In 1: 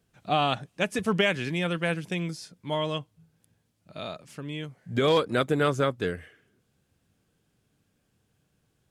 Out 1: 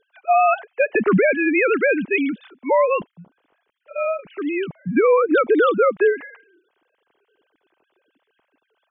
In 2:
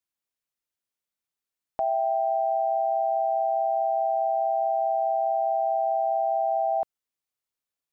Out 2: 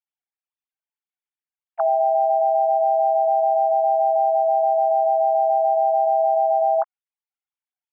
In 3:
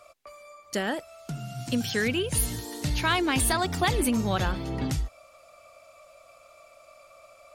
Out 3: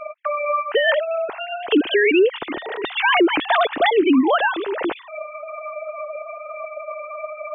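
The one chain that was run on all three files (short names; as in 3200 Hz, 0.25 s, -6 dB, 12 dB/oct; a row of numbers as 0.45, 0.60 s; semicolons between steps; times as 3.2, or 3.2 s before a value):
sine-wave speech; compressor 6:1, threshold -23 dBFS; limiter -22.5 dBFS; match loudness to -19 LUFS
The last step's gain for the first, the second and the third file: +14.0, +10.5, +14.0 dB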